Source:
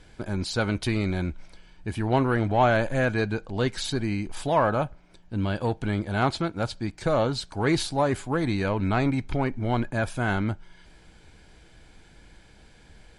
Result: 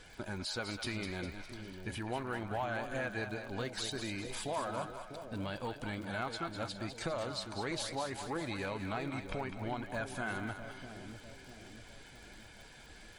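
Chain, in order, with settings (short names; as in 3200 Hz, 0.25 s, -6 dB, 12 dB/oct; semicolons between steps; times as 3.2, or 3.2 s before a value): bin magnitudes rounded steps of 15 dB; low shelf 460 Hz -10 dB; compressor 3:1, threshold -42 dBFS, peak gain reduction 16.5 dB; crackle 45/s -49 dBFS; on a send: split-band echo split 620 Hz, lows 0.649 s, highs 0.203 s, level -7.5 dB; on the sum: gain +2.5 dB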